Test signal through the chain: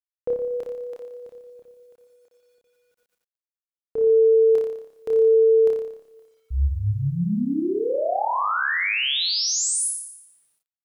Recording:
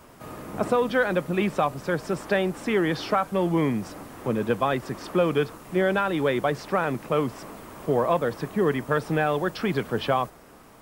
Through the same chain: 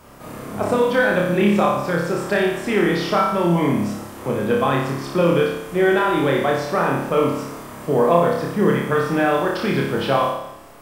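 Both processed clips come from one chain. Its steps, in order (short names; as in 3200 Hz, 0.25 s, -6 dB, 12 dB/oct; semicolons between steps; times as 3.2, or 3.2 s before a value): flutter echo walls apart 5 m, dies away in 0.79 s; Schroeder reverb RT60 0.91 s, combs from 31 ms, DRR 15.5 dB; requantised 12-bit, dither none; gain +2 dB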